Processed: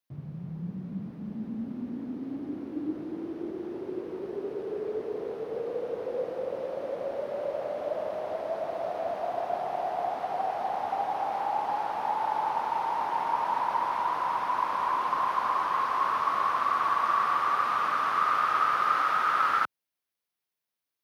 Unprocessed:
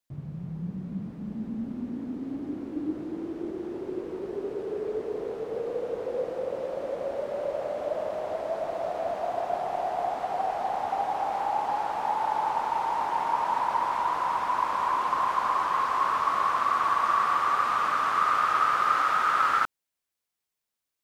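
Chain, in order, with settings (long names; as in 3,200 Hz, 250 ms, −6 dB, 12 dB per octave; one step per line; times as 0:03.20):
high-pass filter 84 Hz
parametric band 7,500 Hz −9 dB 0.42 octaves
level −1.5 dB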